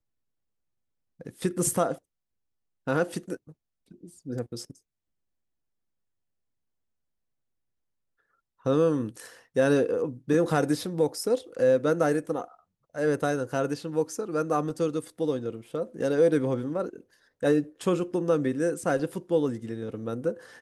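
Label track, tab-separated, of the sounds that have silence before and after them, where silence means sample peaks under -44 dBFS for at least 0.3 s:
1.200000	1.980000	sound
2.870000	3.520000	sound
3.910000	4.710000	sound
8.660000	12.540000	sound
12.950000	17.010000	sound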